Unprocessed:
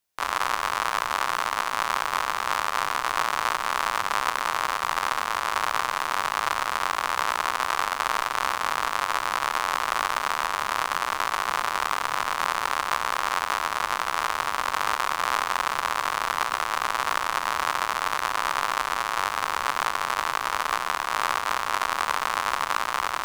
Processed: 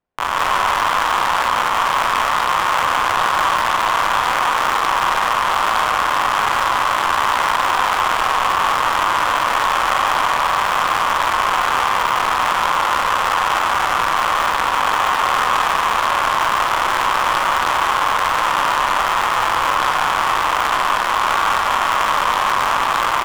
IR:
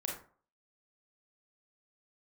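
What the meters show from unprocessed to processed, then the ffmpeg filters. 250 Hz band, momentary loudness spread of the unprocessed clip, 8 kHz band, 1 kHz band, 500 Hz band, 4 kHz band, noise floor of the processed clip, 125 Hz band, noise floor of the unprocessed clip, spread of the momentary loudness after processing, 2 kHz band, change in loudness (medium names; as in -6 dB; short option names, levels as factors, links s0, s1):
+10.5 dB, 1 LU, +5.5 dB, +10.0 dB, +10.0 dB, +8.5 dB, -19 dBFS, +11.5 dB, -32 dBFS, 1 LU, +8.0 dB, +9.0 dB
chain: -filter_complex "[0:a]asplit=2[s0][s1];[s1]aecho=0:1:145.8|195.3:0.282|0.794[s2];[s0][s2]amix=inputs=2:normalize=0,adynamicsmooth=sensitivity=6:basefreq=1100,asplit=2[s3][s4];[1:a]atrim=start_sample=2205[s5];[s4][s5]afir=irnorm=-1:irlink=0,volume=0.473[s6];[s3][s6]amix=inputs=2:normalize=0,asoftclip=type=tanh:threshold=0.158,volume=2.37"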